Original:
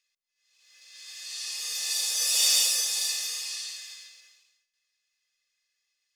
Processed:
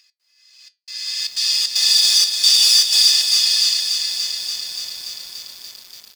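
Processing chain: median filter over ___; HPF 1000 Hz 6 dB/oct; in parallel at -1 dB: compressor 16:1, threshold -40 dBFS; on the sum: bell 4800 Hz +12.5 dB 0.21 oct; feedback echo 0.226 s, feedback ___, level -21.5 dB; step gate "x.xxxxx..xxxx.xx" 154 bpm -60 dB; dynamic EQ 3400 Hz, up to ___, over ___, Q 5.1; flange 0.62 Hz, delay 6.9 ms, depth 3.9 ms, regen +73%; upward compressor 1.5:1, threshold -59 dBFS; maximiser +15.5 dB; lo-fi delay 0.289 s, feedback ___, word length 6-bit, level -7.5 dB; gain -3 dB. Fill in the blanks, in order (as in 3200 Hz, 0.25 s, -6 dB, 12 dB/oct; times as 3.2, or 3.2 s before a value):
3 samples, 38%, +8 dB, -43 dBFS, 80%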